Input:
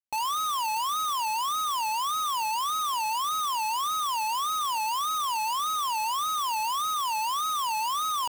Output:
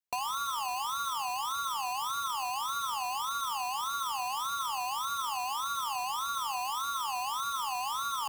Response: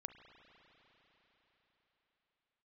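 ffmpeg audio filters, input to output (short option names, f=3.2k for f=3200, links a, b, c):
-filter_complex "[0:a]bandreject=f=83.44:t=h:w=4,bandreject=f=166.88:t=h:w=4,bandreject=f=250.32:t=h:w=4,bandreject=f=333.76:t=h:w=4,bandreject=f=417.2:t=h:w=4,bandreject=f=500.64:t=h:w=4,bandreject=f=584.08:t=h:w=4,bandreject=f=667.52:t=h:w=4,bandreject=f=750.96:t=h:w=4,bandreject=f=834.4:t=h:w=4,bandreject=f=917.84:t=h:w=4,bandreject=f=1.00128k:t=h:w=4,bandreject=f=1.08472k:t=h:w=4,bandreject=f=1.16816k:t=h:w=4,bandreject=f=1.2516k:t=h:w=4,bandreject=f=1.33504k:t=h:w=4,aeval=exprs='val(0)*sin(2*PI*130*n/s)':c=same,acrossover=split=190[a][b];[b]acompressor=threshold=-33dB:ratio=6[c];[a][c]amix=inputs=2:normalize=0,volume=3dB"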